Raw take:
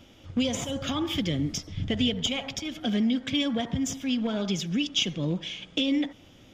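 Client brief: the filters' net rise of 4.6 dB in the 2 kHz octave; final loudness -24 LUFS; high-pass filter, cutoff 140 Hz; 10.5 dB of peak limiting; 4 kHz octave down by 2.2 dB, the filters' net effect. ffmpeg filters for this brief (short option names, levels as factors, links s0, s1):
-af "highpass=140,equalizer=f=2000:t=o:g=8.5,equalizer=f=4000:t=o:g=-7.5,volume=2.82,alimiter=limit=0.178:level=0:latency=1"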